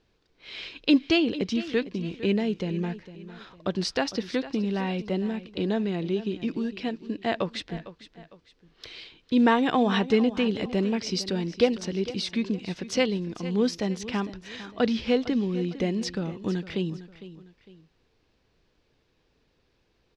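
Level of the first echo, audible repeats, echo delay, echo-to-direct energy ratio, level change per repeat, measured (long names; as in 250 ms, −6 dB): −15.0 dB, 2, 455 ms, −14.5 dB, −8.5 dB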